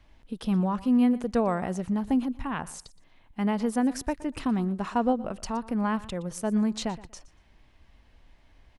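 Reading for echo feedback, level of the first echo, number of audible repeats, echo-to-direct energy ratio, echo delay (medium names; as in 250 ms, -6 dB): 19%, -18.5 dB, 2, -18.5 dB, 119 ms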